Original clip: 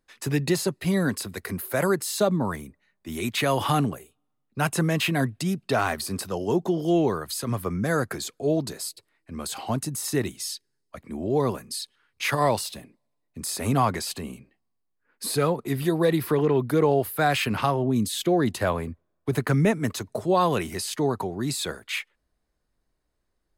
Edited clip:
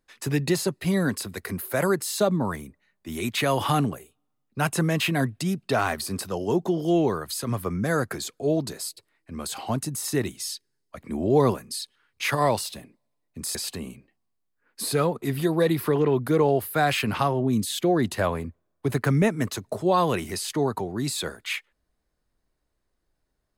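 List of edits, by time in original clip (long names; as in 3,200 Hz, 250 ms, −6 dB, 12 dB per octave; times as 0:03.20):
0:11.01–0:11.54: clip gain +4 dB
0:13.55–0:13.98: remove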